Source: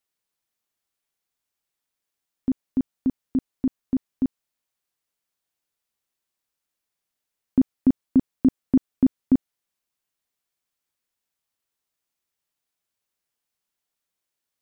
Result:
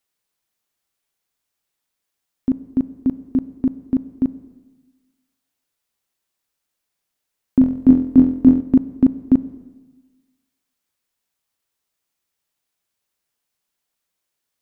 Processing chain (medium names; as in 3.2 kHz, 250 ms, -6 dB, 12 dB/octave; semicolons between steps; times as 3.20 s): 7.59–8.61 s: flutter echo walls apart 4 m, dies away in 0.46 s; on a send at -14 dB: reverberation RT60 1.3 s, pre-delay 8 ms; on the sum: trim +4.5 dB